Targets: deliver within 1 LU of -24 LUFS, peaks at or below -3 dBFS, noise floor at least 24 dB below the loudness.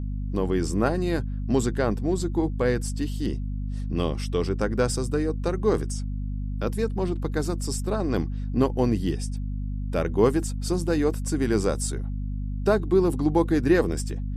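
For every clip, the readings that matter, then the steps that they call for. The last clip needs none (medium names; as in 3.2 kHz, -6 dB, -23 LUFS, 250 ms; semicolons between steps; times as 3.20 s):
hum 50 Hz; highest harmonic 250 Hz; hum level -27 dBFS; loudness -26.0 LUFS; peak level -7.0 dBFS; loudness target -24.0 LUFS
-> hum notches 50/100/150/200/250 Hz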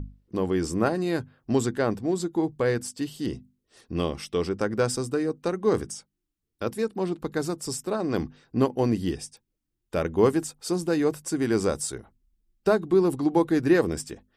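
hum not found; loudness -26.5 LUFS; peak level -7.5 dBFS; loudness target -24.0 LUFS
-> trim +2.5 dB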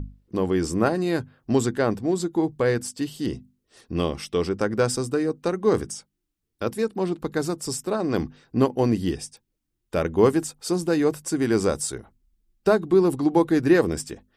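loudness -24.0 LUFS; peak level -5.0 dBFS; noise floor -78 dBFS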